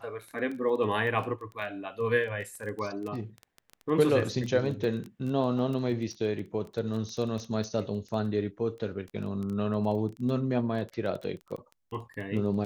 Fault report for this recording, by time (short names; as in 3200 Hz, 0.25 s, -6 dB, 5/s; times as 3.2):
crackle 13/s -33 dBFS